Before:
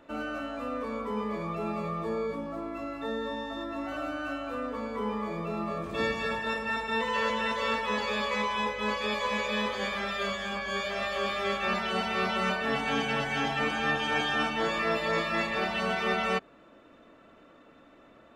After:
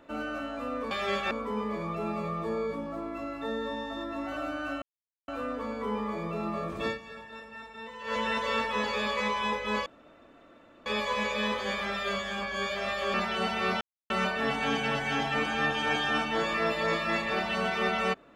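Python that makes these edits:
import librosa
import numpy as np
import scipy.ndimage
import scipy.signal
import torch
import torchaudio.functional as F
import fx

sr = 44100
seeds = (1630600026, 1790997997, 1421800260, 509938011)

y = fx.edit(x, sr, fx.insert_silence(at_s=4.42, length_s=0.46),
    fx.fade_down_up(start_s=5.98, length_s=1.34, db=-13.5, fade_s=0.14),
    fx.insert_room_tone(at_s=9.0, length_s=1.0),
    fx.move(start_s=11.28, length_s=0.4, to_s=0.91),
    fx.insert_silence(at_s=12.35, length_s=0.29), tone=tone)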